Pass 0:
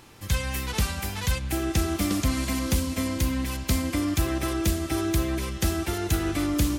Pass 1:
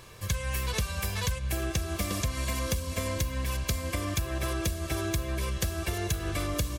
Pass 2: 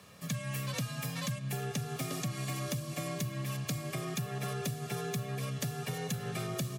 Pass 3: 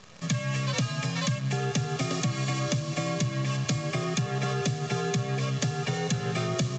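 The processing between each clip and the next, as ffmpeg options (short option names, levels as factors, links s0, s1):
-af "aecho=1:1:1.8:0.67,acompressor=threshold=0.0501:ratio=10"
-af "afreqshift=68,volume=0.501"
-af "acrusher=bits=9:dc=4:mix=0:aa=0.000001,volume=2.51" -ar 16000 -c:a pcm_alaw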